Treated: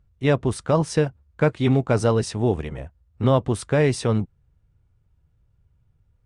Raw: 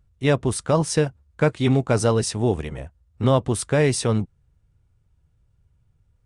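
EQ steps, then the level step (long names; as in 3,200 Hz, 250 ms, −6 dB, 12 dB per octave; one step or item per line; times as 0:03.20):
high-shelf EQ 5,600 Hz −10.5 dB
0.0 dB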